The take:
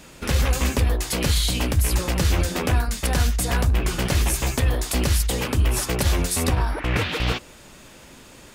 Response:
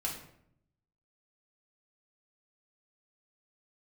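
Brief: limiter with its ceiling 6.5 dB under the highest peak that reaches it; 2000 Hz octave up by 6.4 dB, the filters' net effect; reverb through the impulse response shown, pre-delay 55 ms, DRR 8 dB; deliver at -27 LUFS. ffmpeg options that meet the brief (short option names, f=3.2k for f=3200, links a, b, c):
-filter_complex "[0:a]equalizer=f=2k:t=o:g=8,alimiter=limit=-12dB:level=0:latency=1,asplit=2[a][b];[1:a]atrim=start_sample=2205,adelay=55[c];[b][c]afir=irnorm=-1:irlink=0,volume=-11dB[d];[a][d]amix=inputs=2:normalize=0,volume=-5dB"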